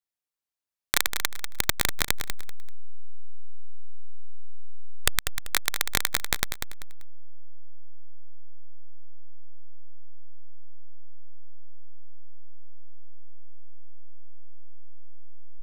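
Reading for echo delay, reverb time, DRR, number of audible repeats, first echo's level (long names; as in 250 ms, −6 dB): 194 ms, no reverb audible, no reverb audible, 3, −8.5 dB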